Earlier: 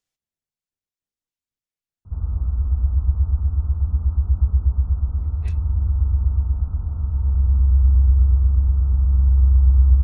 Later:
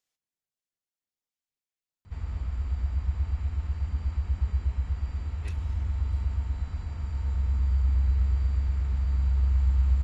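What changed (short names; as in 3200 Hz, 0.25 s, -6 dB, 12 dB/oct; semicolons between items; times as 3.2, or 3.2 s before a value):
background: remove steep low-pass 1400 Hz 72 dB/oct; master: add low shelf 200 Hz -10.5 dB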